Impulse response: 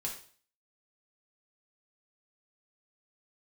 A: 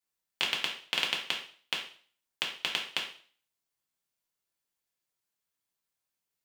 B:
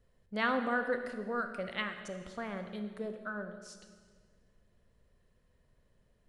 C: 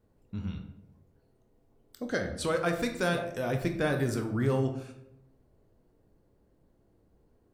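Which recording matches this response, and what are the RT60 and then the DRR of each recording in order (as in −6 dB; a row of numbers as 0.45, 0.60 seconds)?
A; 0.45, 1.6, 0.80 seconds; −2.0, 6.5, 4.5 decibels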